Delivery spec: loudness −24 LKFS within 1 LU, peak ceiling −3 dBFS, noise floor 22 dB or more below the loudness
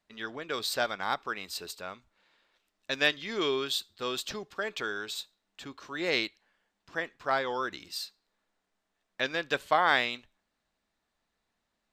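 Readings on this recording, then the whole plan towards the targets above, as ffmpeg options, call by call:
integrated loudness −31.5 LKFS; sample peak −9.5 dBFS; target loudness −24.0 LKFS
→ -af "volume=7.5dB,alimiter=limit=-3dB:level=0:latency=1"

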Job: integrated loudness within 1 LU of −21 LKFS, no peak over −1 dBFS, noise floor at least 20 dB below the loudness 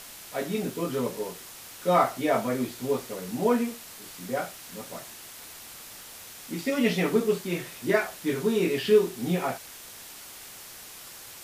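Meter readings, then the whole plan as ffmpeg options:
background noise floor −45 dBFS; target noise floor −48 dBFS; integrated loudness −27.5 LKFS; sample peak −9.0 dBFS; target loudness −21.0 LKFS
→ -af "afftdn=noise_reduction=6:noise_floor=-45"
-af "volume=6.5dB"

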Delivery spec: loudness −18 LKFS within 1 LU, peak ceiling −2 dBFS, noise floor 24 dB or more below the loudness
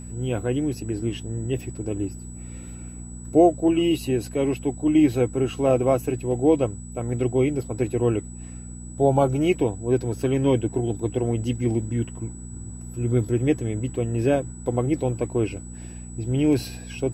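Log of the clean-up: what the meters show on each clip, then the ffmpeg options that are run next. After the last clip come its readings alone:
mains hum 60 Hz; hum harmonics up to 240 Hz; level of the hum −37 dBFS; interfering tone 7,900 Hz; level of the tone −44 dBFS; integrated loudness −24.0 LKFS; sample peak −5.0 dBFS; target loudness −18.0 LKFS
→ -af "bandreject=frequency=60:width_type=h:width=4,bandreject=frequency=120:width_type=h:width=4,bandreject=frequency=180:width_type=h:width=4,bandreject=frequency=240:width_type=h:width=4"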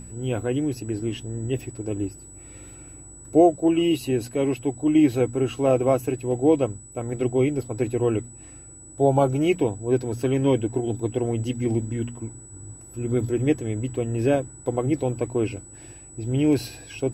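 mains hum none found; interfering tone 7,900 Hz; level of the tone −44 dBFS
→ -af "bandreject=frequency=7900:width=30"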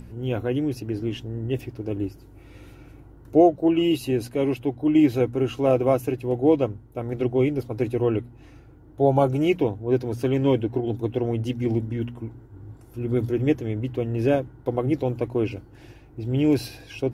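interfering tone none found; integrated loudness −24.0 LKFS; sample peak −5.5 dBFS; target loudness −18.0 LKFS
→ -af "volume=6dB,alimiter=limit=-2dB:level=0:latency=1"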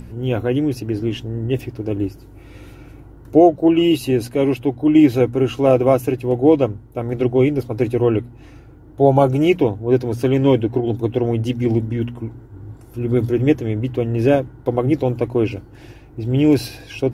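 integrated loudness −18.0 LKFS; sample peak −2.0 dBFS; background noise floor −43 dBFS

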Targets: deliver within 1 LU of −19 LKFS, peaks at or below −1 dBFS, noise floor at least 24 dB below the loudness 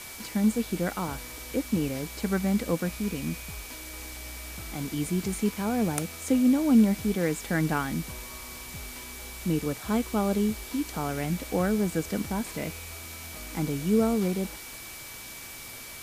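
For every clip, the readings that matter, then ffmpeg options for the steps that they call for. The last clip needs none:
interfering tone 2,300 Hz; level of the tone −47 dBFS; background noise floor −42 dBFS; target noise floor −53 dBFS; integrated loudness −29.0 LKFS; sample peak −11.5 dBFS; target loudness −19.0 LKFS
→ -af "bandreject=frequency=2300:width=30"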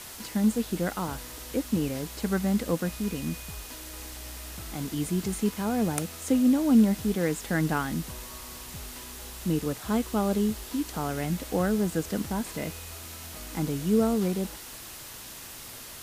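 interfering tone none found; background noise floor −43 dBFS; target noise floor −53 dBFS
→ -af "afftdn=noise_reduction=10:noise_floor=-43"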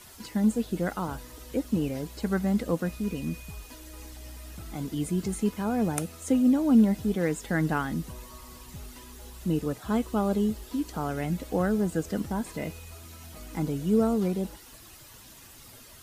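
background noise floor −50 dBFS; target noise floor −52 dBFS
→ -af "afftdn=noise_reduction=6:noise_floor=-50"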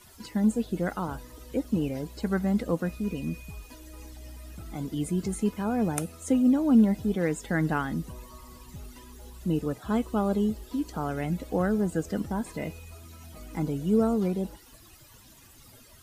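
background noise floor −53 dBFS; integrated loudness −28.0 LKFS; sample peak −11.5 dBFS; target loudness −19.0 LKFS
→ -af "volume=9dB"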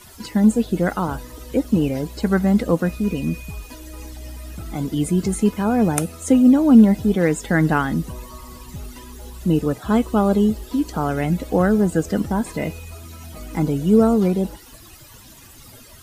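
integrated loudness −19.0 LKFS; sample peak −2.5 dBFS; background noise floor −44 dBFS

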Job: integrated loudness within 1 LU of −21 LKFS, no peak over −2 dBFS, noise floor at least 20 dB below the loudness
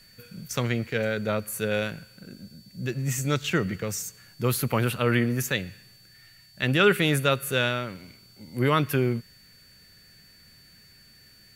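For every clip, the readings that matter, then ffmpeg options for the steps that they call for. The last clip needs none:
interfering tone 4,500 Hz; level of the tone −54 dBFS; integrated loudness −26.0 LKFS; sample peak −7.5 dBFS; target loudness −21.0 LKFS
→ -af "bandreject=frequency=4500:width=30"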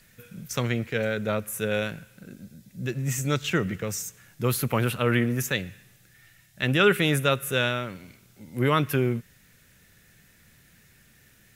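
interfering tone none found; integrated loudness −26.0 LKFS; sample peak −7.5 dBFS; target loudness −21.0 LKFS
→ -af "volume=5dB"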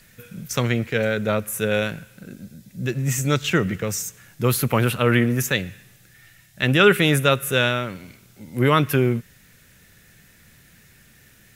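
integrated loudness −21.0 LKFS; sample peak −2.5 dBFS; background noise floor −53 dBFS

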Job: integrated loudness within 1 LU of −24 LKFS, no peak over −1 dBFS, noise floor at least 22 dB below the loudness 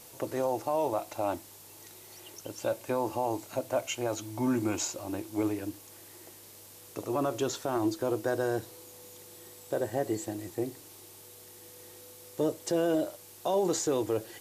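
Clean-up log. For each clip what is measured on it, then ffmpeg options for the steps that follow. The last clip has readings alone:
background noise floor −52 dBFS; target noise floor −54 dBFS; integrated loudness −32.0 LKFS; sample peak −17.5 dBFS; target loudness −24.0 LKFS
→ -af "afftdn=noise_reduction=6:noise_floor=-52"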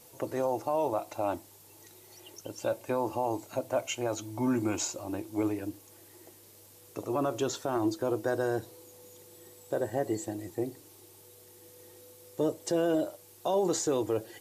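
background noise floor −56 dBFS; integrated loudness −32.0 LKFS; sample peak −17.5 dBFS; target loudness −24.0 LKFS
→ -af "volume=8dB"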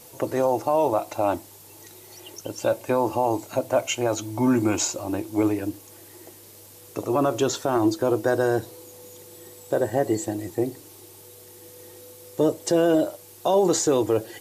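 integrated loudness −24.0 LKFS; sample peak −9.5 dBFS; background noise floor −48 dBFS

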